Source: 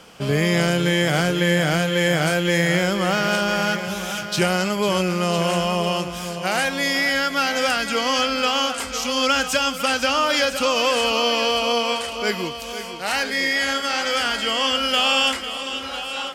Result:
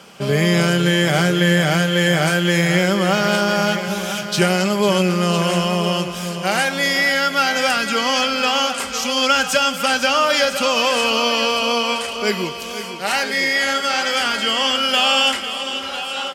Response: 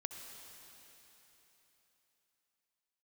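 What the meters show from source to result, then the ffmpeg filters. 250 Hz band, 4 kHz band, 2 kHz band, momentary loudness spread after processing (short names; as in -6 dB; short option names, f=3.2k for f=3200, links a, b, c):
+3.5 dB, +3.0 dB, +3.0 dB, 7 LU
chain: -filter_complex "[0:a]highpass=84,aecho=1:1:5.1:0.36,asplit=2[a][b];[1:a]atrim=start_sample=2205[c];[b][c]afir=irnorm=-1:irlink=0,volume=-7dB[d];[a][d]amix=inputs=2:normalize=0"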